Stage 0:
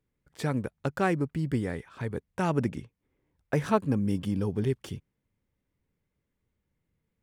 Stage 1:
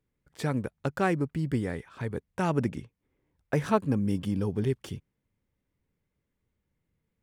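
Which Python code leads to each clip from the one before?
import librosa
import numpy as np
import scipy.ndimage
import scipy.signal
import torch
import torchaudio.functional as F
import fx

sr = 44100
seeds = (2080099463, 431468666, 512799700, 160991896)

y = x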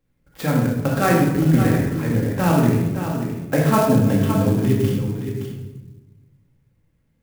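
y = x + 10.0 ** (-8.5 / 20.0) * np.pad(x, (int(568 * sr / 1000.0), 0))[:len(x)]
y = fx.room_shoebox(y, sr, seeds[0], volume_m3=570.0, walls='mixed', distance_m=2.2)
y = fx.clock_jitter(y, sr, seeds[1], jitter_ms=0.036)
y = y * 10.0 ** (4.5 / 20.0)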